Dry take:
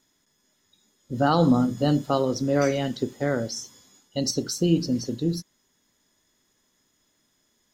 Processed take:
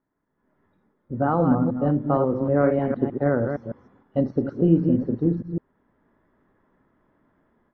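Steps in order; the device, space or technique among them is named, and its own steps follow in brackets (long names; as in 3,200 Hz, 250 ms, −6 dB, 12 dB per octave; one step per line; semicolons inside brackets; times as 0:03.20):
delay that plays each chunk backwards 155 ms, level −6.5 dB
action camera in a waterproof case (low-pass filter 1,500 Hz 24 dB per octave; automatic gain control gain up to 15 dB; level −6 dB; AAC 48 kbit/s 44,100 Hz)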